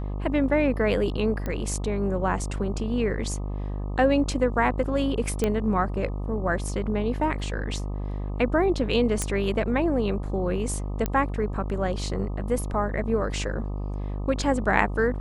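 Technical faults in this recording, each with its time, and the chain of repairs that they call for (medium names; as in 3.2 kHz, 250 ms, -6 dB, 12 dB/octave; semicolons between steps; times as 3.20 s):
buzz 50 Hz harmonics 25 -30 dBFS
1.46 s: pop -18 dBFS
5.44 s: pop -11 dBFS
9.22 s: pop -11 dBFS
11.06 s: pop -12 dBFS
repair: de-click; de-hum 50 Hz, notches 25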